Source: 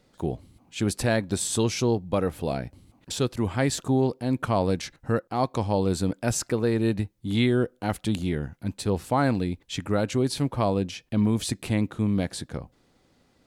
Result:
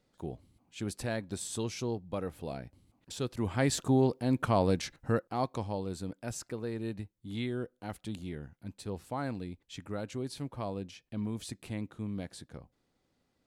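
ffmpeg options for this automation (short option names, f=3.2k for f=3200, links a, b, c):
-af "volume=-3dB,afade=t=in:st=3.14:d=0.62:silence=0.398107,afade=t=out:st=4.95:d=0.89:silence=0.316228"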